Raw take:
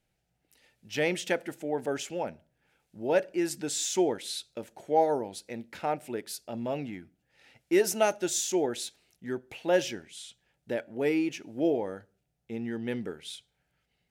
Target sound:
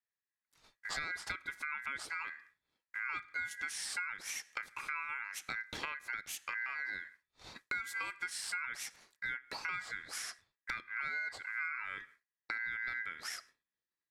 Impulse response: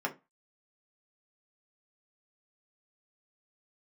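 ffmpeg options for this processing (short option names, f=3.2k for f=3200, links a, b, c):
-filter_complex "[0:a]agate=range=-33dB:threshold=-54dB:ratio=3:detection=peak,acrossover=split=240[a][b];[b]acompressor=threshold=-48dB:ratio=2.5[c];[a][c]amix=inputs=2:normalize=0,lowpass=11k,acompressor=threshold=-49dB:ratio=5,aeval=exprs='val(0)*sin(2*PI*1800*n/s)':c=same,volume=14dB"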